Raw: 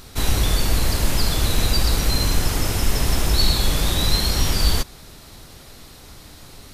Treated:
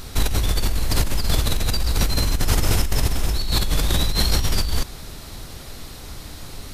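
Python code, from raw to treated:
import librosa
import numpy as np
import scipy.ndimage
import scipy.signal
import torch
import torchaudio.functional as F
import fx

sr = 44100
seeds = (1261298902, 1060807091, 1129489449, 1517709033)

y = fx.over_compress(x, sr, threshold_db=-22.0, ratio=-1.0)
y = fx.low_shelf(y, sr, hz=78.0, db=5.5)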